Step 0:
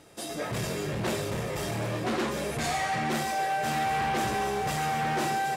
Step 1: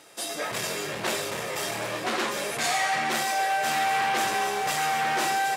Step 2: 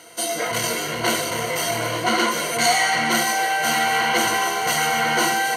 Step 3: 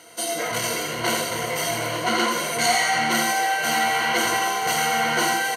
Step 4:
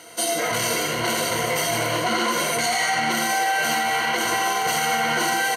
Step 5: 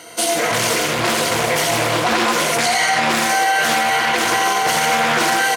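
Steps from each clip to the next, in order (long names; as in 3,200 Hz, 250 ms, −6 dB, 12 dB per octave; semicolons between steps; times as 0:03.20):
high-pass filter 910 Hz 6 dB per octave; level +6.5 dB
EQ curve with evenly spaced ripples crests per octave 1.9, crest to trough 15 dB; level +5 dB
single-tap delay 84 ms −7 dB; level −2.5 dB
brickwall limiter −16.5 dBFS, peak gain reduction 8.5 dB; level +3.5 dB
highs frequency-modulated by the lows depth 0.34 ms; level +5.5 dB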